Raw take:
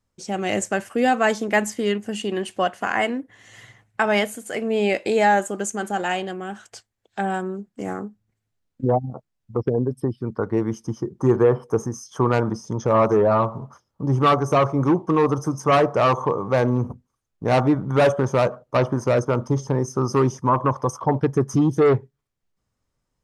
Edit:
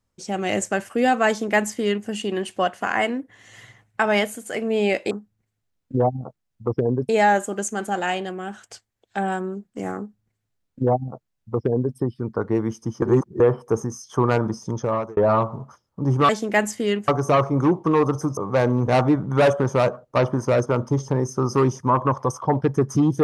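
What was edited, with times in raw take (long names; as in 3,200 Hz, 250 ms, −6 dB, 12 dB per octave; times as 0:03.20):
0:01.28–0:02.07: duplicate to 0:14.31
0:08.00–0:09.98: duplicate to 0:05.11
0:11.04–0:11.42: reverse
0:12.73–0:13.19: fade out
0:15.60–0:16.35: remove
0:16.86–0:17.47: remove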